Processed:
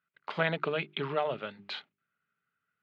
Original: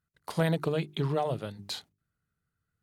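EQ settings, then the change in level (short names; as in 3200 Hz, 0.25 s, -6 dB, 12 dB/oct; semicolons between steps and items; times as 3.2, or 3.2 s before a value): speaker cabinet 300–2600 Hz, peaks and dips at 320 Hz -9 dB, 490 Hz -8 dB, 730 Hz -8 dB, 1000 Hz -7 dB, 1800 Hz -5 dB; tilt +2 dB/oct; +8.0 dB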